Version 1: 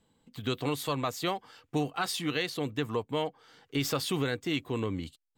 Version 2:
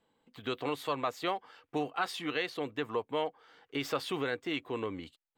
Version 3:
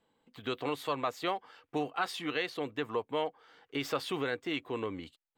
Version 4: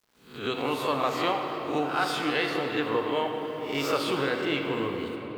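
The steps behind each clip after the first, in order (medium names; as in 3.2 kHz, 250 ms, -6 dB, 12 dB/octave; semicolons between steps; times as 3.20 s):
tone controls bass -13 dB, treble -12 dB
no audible change
reverse spectral sustain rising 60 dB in 0.47 s; bit crusher 11-bit; reverberation RT60 4.8 s, pre-delay 19 ms, DRR 2.5 dB; trim +3.5 dB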